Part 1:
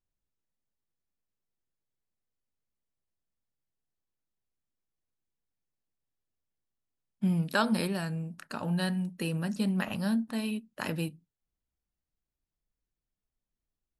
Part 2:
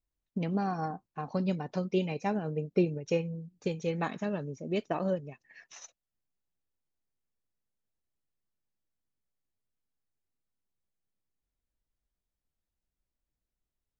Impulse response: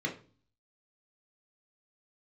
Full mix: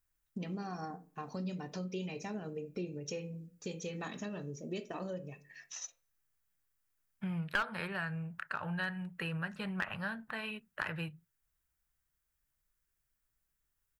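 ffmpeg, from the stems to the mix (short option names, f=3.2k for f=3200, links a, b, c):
-filter_complex "[0:a]firequalizer=gain_entry='entry(150,0);entry(240,-18);entry(370,-6);entry(1500,10);entry(5200,-15)':delay=0.05:min_phase=1,volume=1.5dB[a];[1:a]alimiter=limit=-23dB:level=0:latency=1:release=59,crystalizer=i=5:c=0,volume=-5.5dB,asplit=2[b][c];[c]volume=-12dB[d];[2:a]atrim=start_sample=2205[e];[d][e]afir=irnorm=-1:irlink=0[f];[a][b][f]amix=inputs=3:normalize=0,aeval=exprs='clip(val(0),-1,0.112)':c=same,acompressor=threshold=-39dB:ratio=2"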